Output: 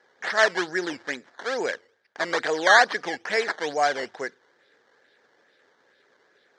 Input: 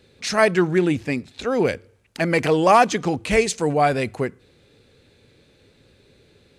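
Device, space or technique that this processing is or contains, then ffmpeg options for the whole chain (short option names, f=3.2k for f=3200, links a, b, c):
circuit-bent sampling toy: -af "acrusher=samples=12:mix=1:aa=0.000001:lfo=1:lforange=12:lforate=2.3,highpass=550,equalizer=f=1.1k:t=q:w=4:g=-3,equalizer=f=1.7k:t=q:w=4:g=10,equalizer=f=2.6k:t=q:w=4:g=-9,lowpass=f=5.9k:w=0.5412,lowpass=f=5.9k:w=1.3066,volume=-2.5dB"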